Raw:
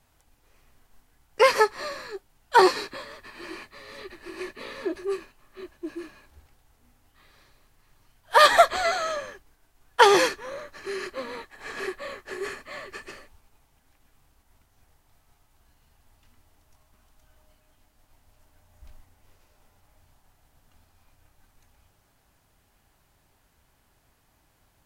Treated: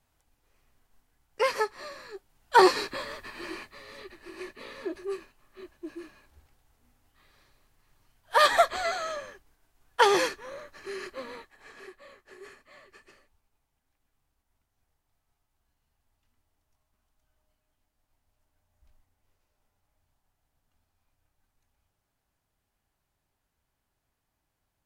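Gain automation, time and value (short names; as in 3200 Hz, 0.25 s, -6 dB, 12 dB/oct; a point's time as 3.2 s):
1.93 s -8 dB
3.1 s +4 dB
4.13 s -5 dB
11.31 s -5 dB
11.79 s -15 dB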